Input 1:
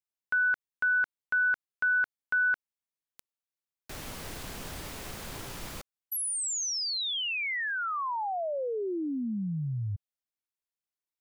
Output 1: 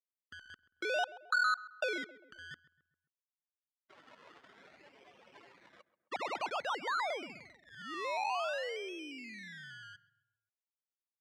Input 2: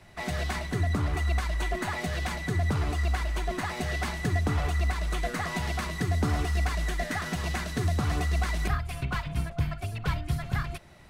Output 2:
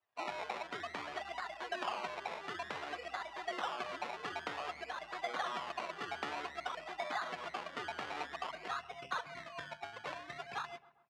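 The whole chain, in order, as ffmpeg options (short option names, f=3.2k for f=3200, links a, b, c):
-filter_complex "[0:a]afftdn=nr=28:nf=-36,adynamicequalizer=threshold=0.00501:dfrequency=1900:dqfactor=3.3:tfrequency=1900:tqfactor=3.3:attack=5:release=100:ratio=0.417:range=3.5:mode=cutabove:tftype=bell,acrusher=samples=22:mix=1:aa=0.000001:lfo=1:lforange=13.2:lforate=0.53,acompressor=threshold=-37dB:ratio=1.5:attack=84:release=36:knee=1:detection=rms,highpass=720,lowpass=3.4k,asplit=2[a][b];[b]adelay=133,lowpass=f=1.8k:p=1,volume=-17dB,asplit=2[c][d];[d]adelay=133,lowpass=f=1.8k:p=1,volume=0.51,asplit=2[e][f];[f]adelay=133,lowpass=f=1.8k:p=1,volume=0.51,asplit=2[g][h];[h]adelay=133,lowpass=f=1.8k:p=1,volume=0.51[i];[c][e][g][i]amix=inputs=4:normalize=0[j];[a][j]amix=inputs=2:normalize=0,volume=1dB"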